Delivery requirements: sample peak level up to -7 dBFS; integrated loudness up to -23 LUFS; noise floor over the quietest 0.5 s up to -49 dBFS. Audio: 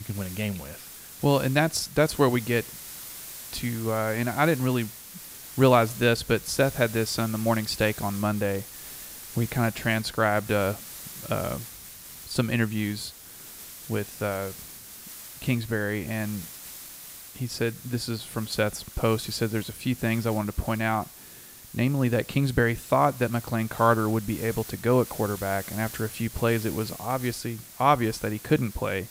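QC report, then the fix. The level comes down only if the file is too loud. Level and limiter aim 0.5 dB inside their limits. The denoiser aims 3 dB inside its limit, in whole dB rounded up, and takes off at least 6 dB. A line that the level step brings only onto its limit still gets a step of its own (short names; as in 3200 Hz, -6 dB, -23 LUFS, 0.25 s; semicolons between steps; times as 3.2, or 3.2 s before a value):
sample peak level -6.0 dBFS: fail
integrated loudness -26.5 LUFS: OK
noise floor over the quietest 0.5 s -47 dBFS: fail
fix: denoiser 6 dB, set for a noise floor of -47 dBFS; limiter -7.5 dBFS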